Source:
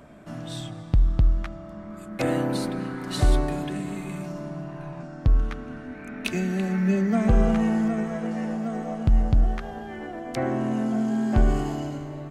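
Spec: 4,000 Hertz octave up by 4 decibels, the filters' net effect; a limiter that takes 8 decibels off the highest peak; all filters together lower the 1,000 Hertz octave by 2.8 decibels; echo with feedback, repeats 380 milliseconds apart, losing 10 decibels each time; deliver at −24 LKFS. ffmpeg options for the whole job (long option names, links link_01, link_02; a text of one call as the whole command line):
ffmpeg -i in.wav -af "equalizer=frequency=1000:width_type=o:gain=-4.5,equalizer=frequency=4000:width_type=o:gain=5,alimiter=limit=-16.5dB:level=0:latency=1,aecho=1:1:380|760|1140|1520:0.316|0.101|0.0324|0.0104,volume=4.5dB" out.wav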